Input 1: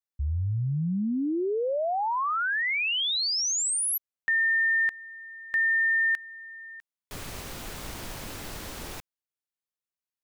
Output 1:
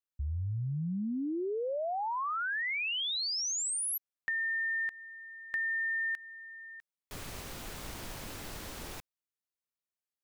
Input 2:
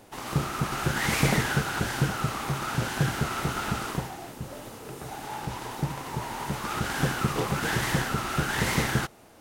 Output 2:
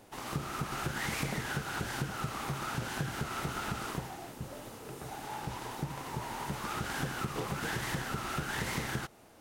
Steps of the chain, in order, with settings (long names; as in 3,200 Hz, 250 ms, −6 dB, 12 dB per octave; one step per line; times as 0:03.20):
downward compressor 5 to 1, threshold −27 dBFS
level −4.5 dB